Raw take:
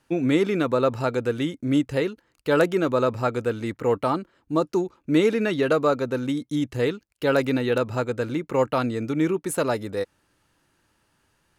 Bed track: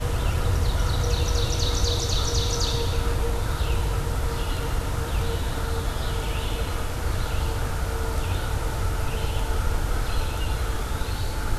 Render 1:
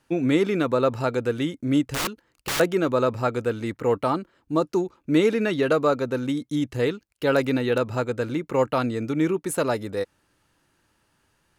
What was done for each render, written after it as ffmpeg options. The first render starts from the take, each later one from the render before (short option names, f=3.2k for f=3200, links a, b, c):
-filter_complex "[0:a]asettb=1/sr,asplit=3[a][b][c];[a]atrim=end=1.884[d];[b]atrim=start=1.88:end=2.6,asetpts=PTS-STARTPTS,afade=t=in:d=0.004:c=qsin,afade=t=out:st=0.716:d=0.004:c=qsin,aeval=exprs='(mod(11.9*val(0)+1,2)-1)/11.9':c=same[e];[c]atrim=start=2.596[f];[d][e]acrossfade=d=0.004:c1=hsin:c2=qsin[g];[g][f]acrossfade=d=0.004:c1=qsin:c2=hsin"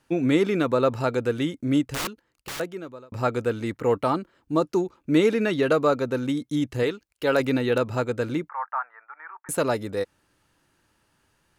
-filter_complex "[0:a]asettb=1/sr,asplit=3[a][b][c];[a]atrim=end=6.834[d];[b]atrim=start=6.83:end=7.4,asetpts=PTS-STARTPTS,afade=t=in:d=0.004:c=qsin,afade=t=out:st=0.566:d=0.004:c=qsin,equalizer=f=160:t=o:w=1.5:g=-6[e];[c]atrim=start=7.396[f];[d][e]acrossfade=d=0.004:c1=hsin:c2=qsin[g];[g][f]acrossfade=d=0.004:c1=qsin:c2=hsin,asettb=1/sr,asplit=3[h][i][j];[h]atrim=end=8.494[k];[i]atrim=start=8.49:end=9.49,asetpts=PTS-STARTPTS,afade=t=in:d=0.004:c=qsin,afade=t=out:st=0.996:d=0.004:c=qsin,asuperpass=centerf=1200:order=8:qfactor=1.2[l];[j]atrim=start=9.486[m];[k][l]acrossfade=d=0.004:c1=hsin:c2=qsin[n];[n][m]acrossfade=d=0.004:c1=qsin:c2=hsin,asplit=2[o][p];[o]atrim=end=3.12,asetpts=PTS-STARTPTS,afade=t=out:st=1.65:d=1.47[q];[p]atrim=start=3.12,asetpts=PTS-STARTPTS,afade=t=in:d=0.004:c=hsin[r];[q][r]concat=n=2:v=0:a=1"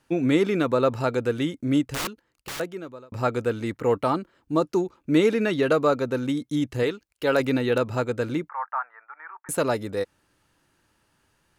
-af anull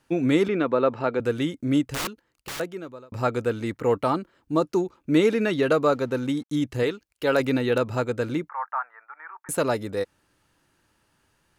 -filter_complex "[0:a]asettb=1/sr,asplit=3[a][b][c];[a]atrim=end=0.484[d];[b]atrim=start=0.48:end=1.2,asetpts=PTS-STARTPTS,afade=t=in:d=0.004:c=qsin,afade=t=out:st=0.716:d=0.004:c=qsin,highpass=180,lowpass=2.9k[e];[c]atrim=start=1.196[f];[d][e]acrossfade=d=0.004:c1=hsin:c2=qsin[g];[g][f]acrossfade=d=0.004:c1=qsin:c2=hsin,asettb=1/sr,asplit=3[h][i][j];[h]atrim=end=5.924[k];[i]atrim=start=5.92:end=6.61,asetpts=PTS-STARTPTS,afade=t=in:d=0.004:c=qsin,afade=t=out:st=0.686:d=0.004:c=qsin,aeval=exprs='sgn(val(0))*max(abs(val(0))-0.00158,0)':c=same[l];[j]atrim=start=6.606[m];[k][l]acrossfade=d=0.004:c1=hsin:c2=qsin[n];[n][m]acrossfade=d=0.004:c1=qsin:c2=hsin"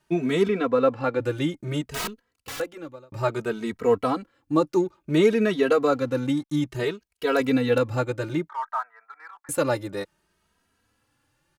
-filter_complex "[0:a]asplit=2[a][b];[b]aeval=exprs='sgn(val(0))*max(abs(val(0))-0.0106,0)':c=same,volume=-7dB[c];[a][c]amix=inputs=2:normalize=0,asplit=2[d][e];[e]adelay=2.8,afreqshift=0.59[f];[d][f]amix=inputs=2:normalize=1"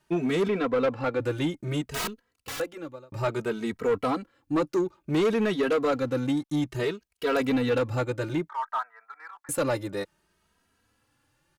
-af "asoftclip=type=tanh:threshold=-19dB"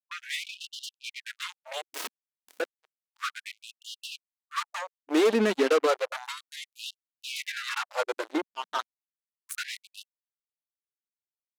-af "acrusher=bits=3:mix=0:aa=0.5,afftfilt=real='re*gte(b*sr/1024,200*pow(2800/200,0.5+0.5*sin(2*PI*0.32*pts/sr)))':imag='im*gte(b*sr/1024,200*pow(2800/200,0.5+0.5*sin(2*PI*0.32*pts/sr)))':win_size=1024:overlap=0.75"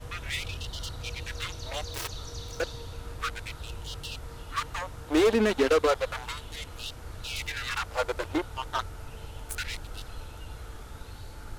-filter_complex "[1:a]volume=-15.5dB[a];[0:a][a]amix=inputs=2:normalize=0"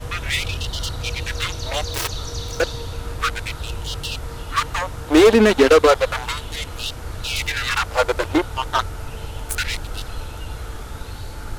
-af "volume=10.5dB"